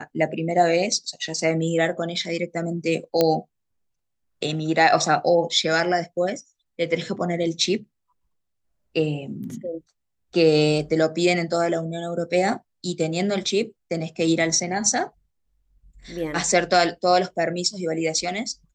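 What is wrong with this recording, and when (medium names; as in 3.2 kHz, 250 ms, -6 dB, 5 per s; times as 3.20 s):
3.21 s: pop -5 dBFS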